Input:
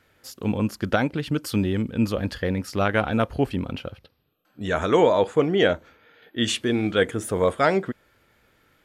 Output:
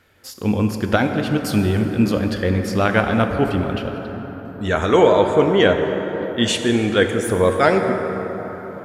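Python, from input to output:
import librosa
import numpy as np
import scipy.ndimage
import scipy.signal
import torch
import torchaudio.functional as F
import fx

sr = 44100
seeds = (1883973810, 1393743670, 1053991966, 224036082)

y = fx.rev_plate(x, sr, seeds[0], rt60_s=4.8, hf_ratio=0.4, predelay_ms=0, drr_db=4.5)
y = F.gain(torch.from_numpy(y), 4.0).numpy()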